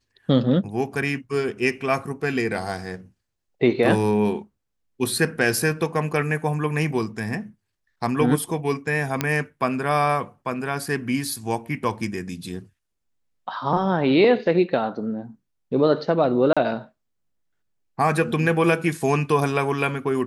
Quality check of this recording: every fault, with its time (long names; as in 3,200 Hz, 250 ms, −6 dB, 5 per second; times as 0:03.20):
0:09.21: click −6 dBFS
0:16.53–0:16.57: drop-out 36 ms